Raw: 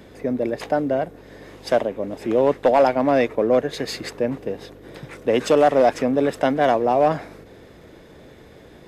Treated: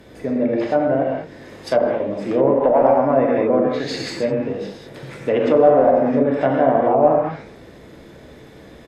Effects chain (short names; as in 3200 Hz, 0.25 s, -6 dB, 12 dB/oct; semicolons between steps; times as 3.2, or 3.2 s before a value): doubler 15 ms -14 dB; non-linear reverb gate 0.23 s flat, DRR -2 dB; treble ducked by the level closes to 1100 Hz, closed at -10.5 dBFS; gain -1 dB